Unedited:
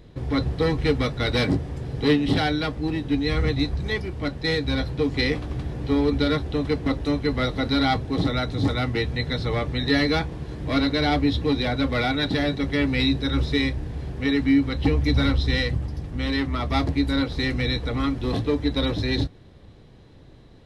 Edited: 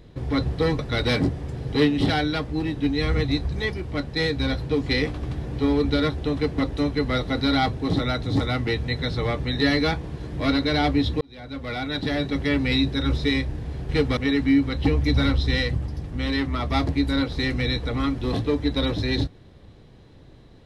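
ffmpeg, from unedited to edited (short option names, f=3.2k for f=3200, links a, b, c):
-filter_complex "[0:a]asplit=5[a][b][c][d][e];[a]atrim=end=0.792[f];[b]atrim=start=1.068:end=11.49,asetpts=PTS-STARTPTS,afade=t=out:st=10.418:d=0.004:c=hsin[g];[c]atrim=start=11.49:end=14.172,asetpts=PTS-STARTPTS,afade=t=in:d=1.13[h];[d]atrim=start=0.788:end=1.072[i];[e]atrim=start=14.168[j];[g][h]concat=n=2:v=0:a=1[k];[f][k]acrossfade=d=0.004:c1=hsin:c2=hsin[l];[l][i]acrossfade=d=0.004:c1=hsin:c2=hsin[m];[m][j]acrossfade=d=0.004:c1=hsin:c2=hsin"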